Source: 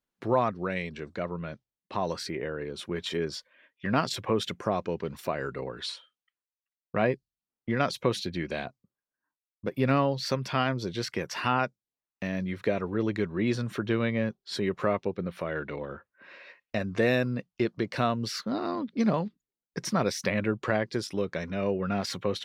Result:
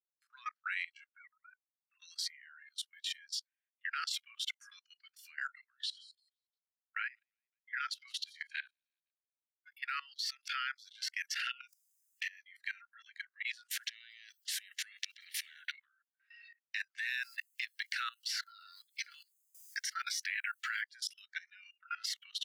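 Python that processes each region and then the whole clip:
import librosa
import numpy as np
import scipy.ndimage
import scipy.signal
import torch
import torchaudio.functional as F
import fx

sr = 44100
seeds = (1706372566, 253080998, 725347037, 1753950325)

y = fx.chain(x, sr, fx.sine_speech(),
    fx.ensemble(), at=(1.07, 2.0))
y = fx.chain(y, sr, fx.highpass(hz=810.0, slope=12),
    fx.high_shelf(hz=4000.0, db=7.0),
    fx.upward_expand(threshold_db=-48.0, expansion=1.5), at=(2.73, 3.92))
y = fx.chain(y, sr, fx.high_shelf(hz=4600.0, db=-8.5),
    fx.echo_wet_highpass(ms=172, feedback_pct=37, hz=4400.0, wet_db=-11.5), at=(5.7, 9.89))
y = fx.chain(y, sr, fx.peak_eq(hz=690.0, db=-7.0, octaves=2.0),
    fx.env_flanger(rest_ms=5.2, full_db=-26.0),
    fx.env_flatten(amount_pct=100), at=(11.39, 12.29))
y = fx.chain(y, sr, fx.over_compress(threshold_db=-31.0, ratio=-0.5),
    fx.spectral_comp(ratio=4.0), at=(13.7, 15.72))
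y = fx.chain(y, sr, fx.highpass(hz=190.0, slope=12),
    fx.quant_dither(seeds[0], bits=12, dither='triangular'),
    fx.band_squash(depth_pct=70), at=(17.23, 20.82))
y = scipy.signal.sosfilt(scipy.signal.butter(12, 1300.0, 'highpass', fs=sr, output='sos'), y)
y = fx.noise_reduce_blind(y, sr, reduce_db=20)
y = fx.level_steps(y, sr, step_db=20)
y = F.gain(torch.from_numpy(y), 3.0).numpy()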